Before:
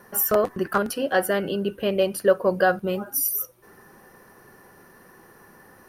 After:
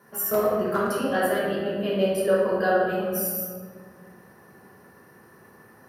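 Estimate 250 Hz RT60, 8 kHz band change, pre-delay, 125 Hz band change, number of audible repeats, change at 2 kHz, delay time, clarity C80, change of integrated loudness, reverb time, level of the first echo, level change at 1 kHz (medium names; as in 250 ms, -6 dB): 2.7 s, -4.5 dB, 3 ms, -0.5 dB, no echo, -1.5 dB, no echo, 1.0 dB, -1.0 dB, 1.9 s, no echo, -1.0 dB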